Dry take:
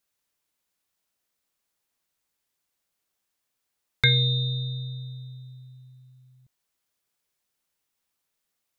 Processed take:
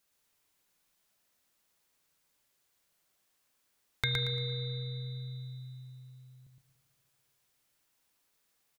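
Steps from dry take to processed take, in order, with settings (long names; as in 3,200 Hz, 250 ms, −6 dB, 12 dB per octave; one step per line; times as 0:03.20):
downward compressor 2.5 to 1, threshold −40 dBFS, peak gain reduction 16 dB
repeating echo 115 ms, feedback 31%, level −4 dB
spring reverb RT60 2.8 s, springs 36/48 ms, chirp 60 ms, DRR 10 dB
level +3 dB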